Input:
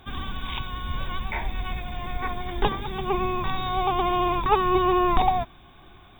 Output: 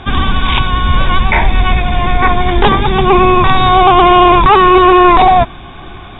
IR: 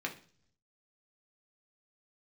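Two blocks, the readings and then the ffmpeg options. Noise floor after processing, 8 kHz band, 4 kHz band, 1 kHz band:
−31 dBFS, can't be measured, +17.0 dB, +17.0 dB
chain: -af "lowpass=3900,apsyclip=22dB,volume=-2dB"

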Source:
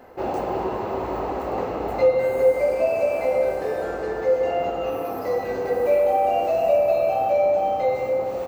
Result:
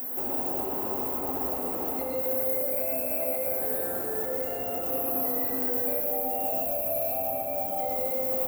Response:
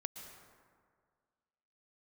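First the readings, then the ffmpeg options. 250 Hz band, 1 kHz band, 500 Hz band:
−3.5 dB, −10.0 dB, −11.5 dB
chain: -filter_complex "[0:a]equalizer=frequency=260:width_type=o:width=0.2:gain=13.5,flanger=delay=6.4:depth=7.4:regen=74:speed=0.81:shape=triangular,acrossover=split=210|1100[link_01][link_02][link_03];[link_01]acompressor=threshold=-47dB:ratio=4[link_04];[link_02]acompressor=threshold=-34dB:ratio=4[link_05];[link_03]acompressor=threshold=-50dB:ratio=4[link_06];[link_04][link_05][link_06]amix=inputs=3:normalize=0,alimiter=level_in=7dB:limit=-24dB:level=0:latency=1,volume=-7dB,aexciter=amount=11.5:drive=7:freq=8400,acrossover=split=4100[link_07][link_08];[link_08]acompressor=threshold=-46dB:ratio=4:attack=1:release=60[link_09];[link_07][link_09]amix=inputs=2:normalize=0,highpass=47,aemphasis=mode=production:type=50fm,asplit=2[link_10][link_11];[1:a]atrim=start_sample=2205,asetrate=30870,aresample=44100,adelay=119[link_12];[link_11][link_12]afir=irnorm=-1:irlink=0,volume=0dB[link_13];[link_10][link_13]amix=inputs=2:normalize=0,volume=2dB"

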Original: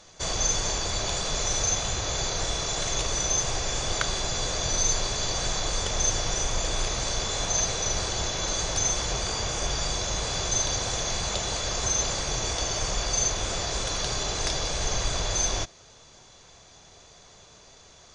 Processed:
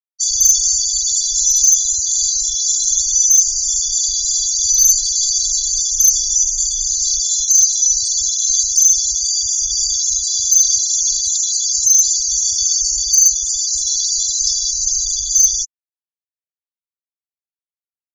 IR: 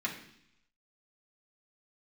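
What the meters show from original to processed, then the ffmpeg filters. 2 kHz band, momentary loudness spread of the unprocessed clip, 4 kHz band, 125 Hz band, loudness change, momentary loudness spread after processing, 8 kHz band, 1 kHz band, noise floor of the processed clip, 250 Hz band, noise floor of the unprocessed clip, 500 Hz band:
below −40 dB, 4 LU, +8.5 dB, below −10 dB, +14.0 dB, 5 LU, +16.5 dB, below −40 dB, below −85 dBFS, below −30 dB, −53 dBFS, below −40 dB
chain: -af "asoftclip=type=tanh:threshold=-21.5dB,aexciter=amount=7.1:drive=8.5:freq=3900,afftfilt=real='re*gte(hypot(re,im),0.282)':imag='im*gte(hypot(re,im),0.282)':win_size=1024:overlap=0.75,volume=-2dB"

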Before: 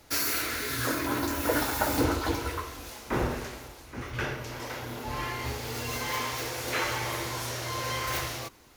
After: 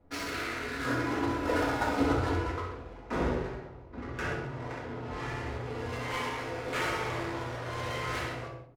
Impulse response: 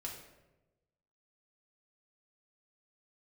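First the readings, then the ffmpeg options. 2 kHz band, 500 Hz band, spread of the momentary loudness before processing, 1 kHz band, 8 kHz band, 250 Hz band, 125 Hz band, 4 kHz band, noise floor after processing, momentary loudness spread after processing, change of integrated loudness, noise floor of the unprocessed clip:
−2.0 dB, 0.0 dB, 10 LU, −1.5 dB, −13.0 dB, 0.0 dB, −0.5 dB, −7.0 dB, −47 dBFS, 10 LU, −2.5 dB, −49 dBFS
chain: -filter_complex "[0:a]asplit=2[link_01][link_02];[link_02]adelay=65,lowpass=frequency=4700:poles=1,volume=-6.5dB,asplit=2[link_03][link_04];[link_04]adelay=65,lowpass=frequency=4700:poles=1,volume=0.46,asplit=2[link_05][link_06];[link_06]adelay=65,lowpass=frequency=4700:poles=1,volume=0.46,asplit=2[link_07][link_08];[link_08]adelay=65,lowpass=frequency=4700:poles=1,volume=0.46,asplit=2[link_09][link_10];[link_10]adelay=65,lowpass=frequency=4700:poles=1,volume=0.46[link_11];[link_01][link_03][link_05][link_07][link_09][link_11]amix=inputs=6:normalize=0,adynamicsmooth=sensitivity=5.5:basefreq=670[link_12];[1:a]atrim=start_sample=2205,afade=type=out:start_time=0.24:duration=0.01,atrim=end_sample=11025[link_13];[link_12][link_13]afir=irnorm=-1:irlink=0"

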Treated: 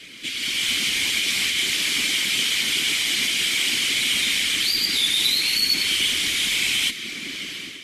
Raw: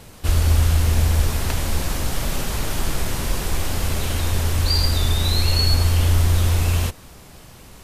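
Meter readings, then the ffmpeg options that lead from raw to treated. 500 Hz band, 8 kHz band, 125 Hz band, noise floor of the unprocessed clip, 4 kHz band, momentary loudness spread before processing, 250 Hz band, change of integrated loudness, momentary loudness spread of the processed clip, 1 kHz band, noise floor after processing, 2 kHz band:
−11.5 dB, +4.5 dB, −28.0 dB, −44 dBFS, +8.5 dB, 8 LU, −6.5 dB, +1.5 dB, 7 LU, −10.5 dB, −35 dBFS, +9.5 dB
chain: -filter_complex "[0:a]equalizer=frequency=930:width=1.9:gain=7.5,acrossover=split=190|1800[link_01][link_02][link_03];[link_01]acompressor=threshold=-27dB:ratio=4[link_04];[link_02]acompressor=threshold=-40dB:ratio=4[link_05];[link_03]acompressor=threshold=-30dB:ratio=4[link_06];[link_04][link_05][link_06]amix=inputs=3:normalize=0,alimiter=limit=-18.5dB:level=0:latency=1:release=162,dynaudnorm=framelen=360:gausssize=3:maxgain=11.5dB,asplit=3[link_07][link_08][link_09];[link_07]bandpass=frequency=270:width_type=q:width=8,volume=0dB[link_10];[link_08]bandpass=frequency=2290:width_type=q:width=8,volume=-6dB[link_11];[link_09]bandpass=frequency=3010:width_type=q:width=8,volume=-9dB[link_12];[link_10][link_11][link_12]amix=inputs=3:normalize=0,asplit=2[link_13][link_14];[link_14]highpass=frequency=720:poles=1,volume=20dB,asoftclip=type=tanh:threshold=-23.5dB[link_15];[link_13][link_15]amix=inputs=2:normalize=0,lowpass=frequency=3500:poles=1,volume=-6dB,afftfilt=real='hypot(re,im)*cos(2*PI*random(0))':imag='hypot(re,im)*sin(2*PI*random(1))':win_size=512:overlap=0.75,crystalizer=i=8:c=0,volume=5.5dB" -ar 48000 -c:a libvorbis -b:a 32k

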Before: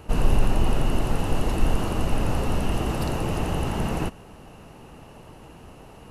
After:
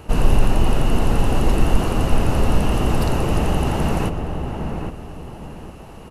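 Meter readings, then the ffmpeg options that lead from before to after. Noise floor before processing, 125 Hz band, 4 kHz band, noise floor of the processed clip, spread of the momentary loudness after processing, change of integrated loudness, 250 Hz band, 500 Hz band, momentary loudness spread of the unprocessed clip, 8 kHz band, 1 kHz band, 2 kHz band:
−46 dBFS, +6.0 dB, +4.5 dB, −39 dBFS, 16 LU, +5.0 dB, +6.0 dB, +5.5 dB, 21 LU, +4.5 dB, +5.5 dB, +5.0 dB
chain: -filter_complex "[0:a]asplit=2[link_01][link_02];[link_02]adelay=808,lowpass=frequency=1500:poles=1,volume=-5dB,asplit=2[link_03][link_04];[link_04]adelay=808,lowpass=frequency=1500:poles=1,volume=0.31,asplit=2[link_05][link_06];[link_06]adelay=808,lowpass=frequency=1500:poles=1,volume=0.31,asplit=2[link_07][link_08];[link_08]adelay=808,lowpass=frequency=1500:poles=1,volume=0.31[link_09];[link_01][link_03][link_05][link_07][link_09]amix=inputs=5:normalize=0,volume=4.5dB"

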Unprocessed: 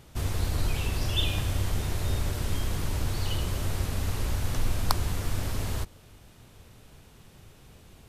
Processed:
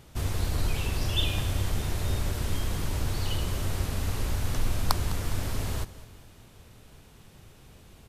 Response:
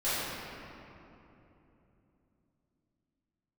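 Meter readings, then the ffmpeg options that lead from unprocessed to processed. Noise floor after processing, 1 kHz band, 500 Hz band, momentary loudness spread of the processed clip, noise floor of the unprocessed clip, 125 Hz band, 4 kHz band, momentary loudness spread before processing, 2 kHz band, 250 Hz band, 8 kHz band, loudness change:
−53 dBFS, 0.0 dB, 0.0 dB, 4 LU, −54 dBFS, −0.5 dB, 0.0 dB, 4 LU, 0.0 dB, 0.0 dB, 0.0 dB, 0.0 dB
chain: -af "aecho=1:1:205|410|615|820:0.141|0.0664|0.0312|0.0147"

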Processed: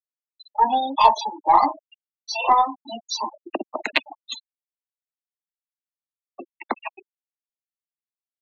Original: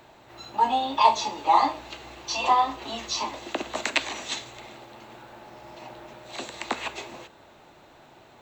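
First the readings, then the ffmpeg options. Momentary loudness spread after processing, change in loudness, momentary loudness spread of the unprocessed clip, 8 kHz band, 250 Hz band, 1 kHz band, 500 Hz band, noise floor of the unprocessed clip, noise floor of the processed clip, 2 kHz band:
18 LU, +4.0 dB, 23 LU, −4.0 dB, +2.0 dB, +3.5 dB, +2.5 dB, −53 dBFS, below −85 dBFS, +1.5 dB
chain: -af "afftfilt=real='re*gte(hypot(re,im),0.0794)':imag='im*gte(hypot(re,im),0.0794)':win_size=1024:overlap=0.75,aeval=exprs='0.531*(cos(1*acos(clip(val(0)/0.531,-1,1)))-cos(1*PI/2))+0.00668*(cos(3*acos(clip(val(0)/0.531,-1,1)))-cos(3*PI/2))+0.0119*(cos(6*acos(clip(val(0)/0.531,-1,1)))-cos(6*PI/2))+0.00531*(cos(8*acos(clip(val(0)/0.531,-1,1)))-cos(8*PI/2))':channel_layout=same,volume=4dB"

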